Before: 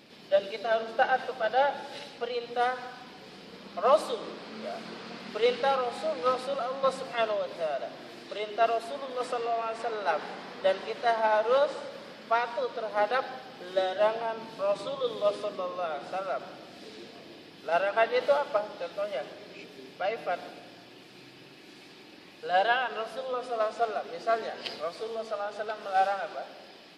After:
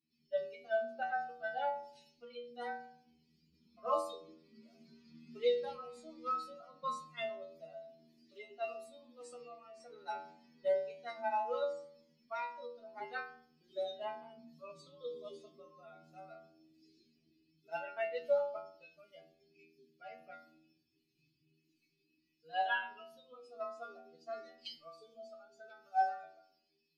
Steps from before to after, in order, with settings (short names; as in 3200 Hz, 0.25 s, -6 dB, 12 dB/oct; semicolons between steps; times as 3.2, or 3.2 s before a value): per-bin expansion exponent 2; metallic resonator 78 Hz, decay 0.67 s, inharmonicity 0.002; gain +5.5 dB